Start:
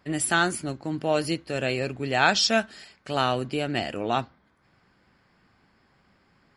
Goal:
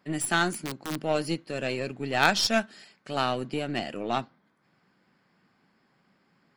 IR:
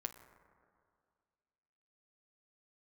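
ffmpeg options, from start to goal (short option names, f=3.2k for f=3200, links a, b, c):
-filter_complex "[0:a]asettb=1/sr,asplit=3[a][b][c];[a]atrim=end=0.524[d];[b]atrim=start=0.52:end=0.96,asetpts=PTS-STARTPTS,afade=t=in:d=0.004:c=qsin,afade=t=out:st=0.436:d=0.004:c=qsin,aeval=exprs='(mod(12.6*val(0)+1,2)-1)/12.6':c=same[e];[c]atrim=start=0.956[f];[d][e]acrossfade=d=0.004:c1=hsin:c2=qsin[g];[g][f]acrossfade=d=0.004:c1=qsin:c2=hsin,lowshelf=f=110:t=q:w=1.5:g=-13,aeval=exprs='0.668*(cos(1*acos(clip(val(0)/0.668,-1,1)))-cos(1*PI/2))+0.188*(cos(3*acos(clip(val(0)/0.668,-1,1)))-cos(3*PI/2))+0.106*(cos(5*acos(clip(val(0)/0.668,-1,1)))-cos(5*PI/2))+0.0473*(cos(7*acos(clip(val(0)/0.668,-1,1)))-cos(7*PI/2))+0.0168*(cos(8*acos(clip(val(0)/0.668,-1,1)))-cos(8*PI/2))':c=same,volume=2.5dB"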